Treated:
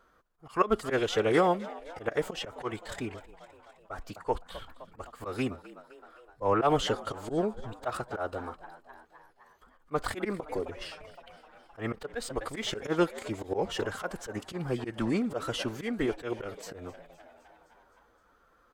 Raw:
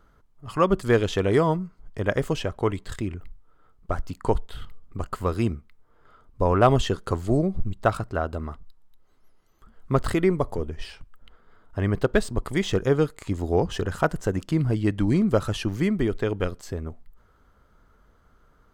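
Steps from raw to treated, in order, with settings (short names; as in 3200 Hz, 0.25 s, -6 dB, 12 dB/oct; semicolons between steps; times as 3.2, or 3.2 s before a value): tone controls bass -14 dB, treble -2 dB; frequency-shifting echo 0.258 s, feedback 65%, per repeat +68 Hz, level -19.5 dB; auto swell 0.1 s; formant-preserving pitch shift +2 st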